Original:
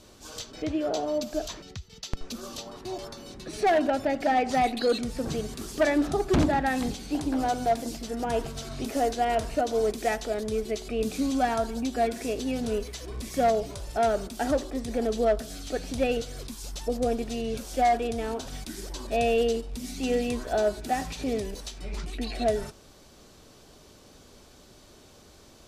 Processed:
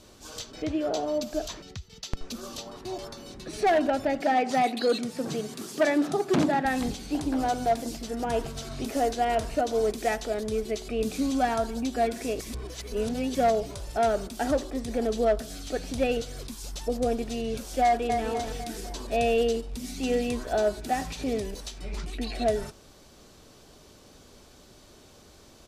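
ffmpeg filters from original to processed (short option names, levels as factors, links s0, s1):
-filter_complex "[0:a]asettb=1/sr,asplit=3[s0][s1][s2];[s0]atrim=end=4.204[s3];[s1]atrim=start=4.2:end=6.65,asetpts=PTS-STARTPTS,afade=t=in:d=0.004:c=qsin,afade=t=out:st=2.446:d=0.004:c=qsin,highpass=f=140:w=0.5412,highpass=f=140:w=1.3066[s4];[s2]atrim=start=6.646[s5];[s3][s4]acrossfade=d=0.004:c1=hsin:c2=qsin[s6];[s6][s5]acrossfade=d=0.004:c1=qsin:c2=hsin,asplit=2[s7][s8];[s8]afade=t=in:st=17.84:d=0.01,afade=t=out:st=18.27:d=0.01,aecho=0:1:250|500|750|1000|1250|1500:0.501187|0.250594|0.125297|0.0626484|0.0313242|0.0156621[s9];[s7][s9]amix=inputs=2:normalize=0,asplit=3[s10][s11][s12];[s10]atrim=end=12.402[s13];[s11]atrim=start=12.398:end=13.352,asetpts=PTS-STARTPTS,areverse[s14];[s12]atrim=start=13.348[s15];[s13][s14]acrossfade=d=0.004:c1=hsin:c2=hsin[s16];[s16][s15]acrossfade=d=0.004:c1=hsin:c2=hsin"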